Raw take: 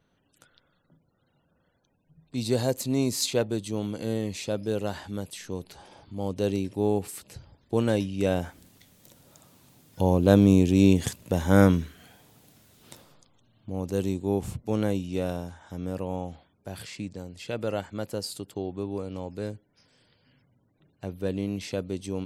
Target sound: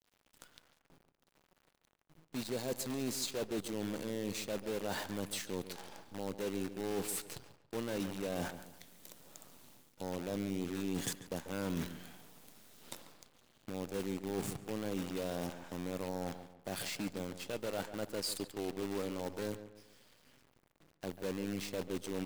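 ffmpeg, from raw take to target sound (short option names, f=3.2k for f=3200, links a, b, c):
-filter_complex "[0:a]highpass=190,areverse,acompressor=threshold=-36dB:ratio=10,areverse,acrusher=bits=8:dc=4:mix=0:aa=0.000001,asplit=2[a][b];[b]adelay=141,lowpass=f=2.6k:p=1,volume=-12.5dB,asplit=2[c][d];[d]adelay=141,lowpass=f=2.6k:p=1,volume=0.37,asplit=2[e][f];[f]adelay=141,lowpass=f=2.6k:p=1,volume=0.37,asplit=2[g][h];[h]adelay=141,lowpass=f=2.6k:p=1,volume=0.37[i];[a][c][e][g][i]amix=inputs=5:normalize=0,asoftclip=type=tanh:threshold=-28.5dB,volume=2.5dB"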